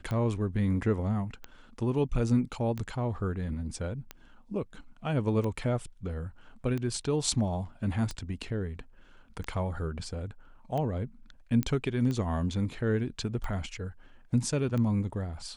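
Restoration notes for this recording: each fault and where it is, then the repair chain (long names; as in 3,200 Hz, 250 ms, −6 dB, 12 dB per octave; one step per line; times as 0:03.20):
scratch tick 45 rpm −22 dBFS
0:11.63: click −15 dBFS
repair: click removal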